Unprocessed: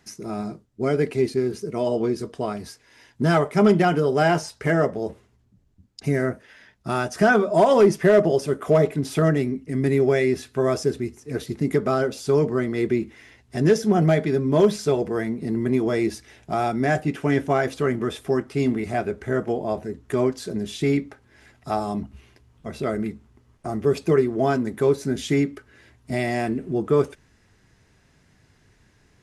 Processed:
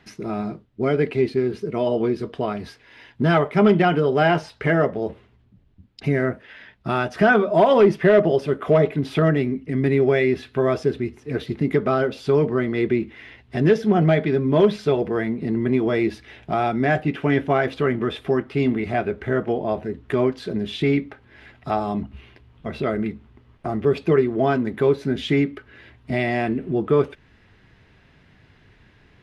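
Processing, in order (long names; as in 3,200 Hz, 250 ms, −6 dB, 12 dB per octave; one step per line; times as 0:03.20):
high shelf with overshoot 4,800 Hz −13.5 dB, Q 1.5
in parallel at −2.5 dB: downward compressor, threshold −32 dBFS, peak gain reduction 19.5 dB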